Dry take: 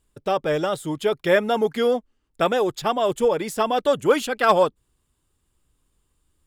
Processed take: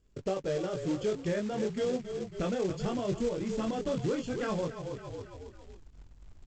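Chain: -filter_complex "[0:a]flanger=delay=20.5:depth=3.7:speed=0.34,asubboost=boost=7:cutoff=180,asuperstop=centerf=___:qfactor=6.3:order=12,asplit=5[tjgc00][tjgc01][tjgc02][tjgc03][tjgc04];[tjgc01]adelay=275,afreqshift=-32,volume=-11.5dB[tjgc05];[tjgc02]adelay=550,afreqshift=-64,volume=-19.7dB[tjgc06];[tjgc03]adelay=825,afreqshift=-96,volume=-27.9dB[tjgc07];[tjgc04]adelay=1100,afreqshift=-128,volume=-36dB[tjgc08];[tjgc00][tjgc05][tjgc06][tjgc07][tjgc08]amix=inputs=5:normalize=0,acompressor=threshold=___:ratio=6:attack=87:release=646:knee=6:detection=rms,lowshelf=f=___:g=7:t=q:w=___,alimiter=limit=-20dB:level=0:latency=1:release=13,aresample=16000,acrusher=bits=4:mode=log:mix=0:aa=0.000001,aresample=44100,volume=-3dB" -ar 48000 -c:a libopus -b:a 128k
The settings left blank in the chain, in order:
3800, -33dB, 630, 1.5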